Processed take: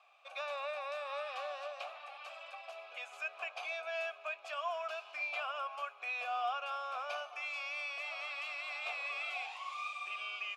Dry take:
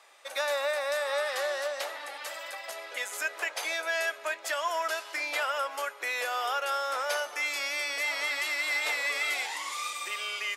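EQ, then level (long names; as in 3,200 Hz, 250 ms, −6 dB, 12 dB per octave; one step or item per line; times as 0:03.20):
formant filter a
low-pass filter 3,800 Hz 6 dB per octave
tilt shelving filter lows −8.5 dB, about 1,200 Hz
+3.5 dB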